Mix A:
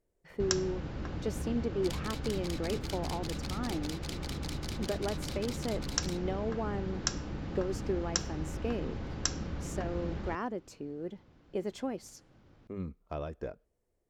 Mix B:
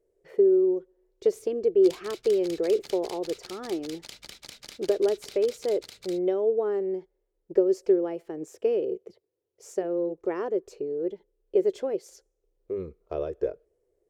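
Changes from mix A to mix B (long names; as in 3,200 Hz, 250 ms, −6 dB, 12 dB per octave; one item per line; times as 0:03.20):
speech: add low shelf with overshoot 310 Hz −8 dB, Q 3
first sound: muted
master: add low shelf with overshoot 630 Hz +6.5 dB, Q 1.5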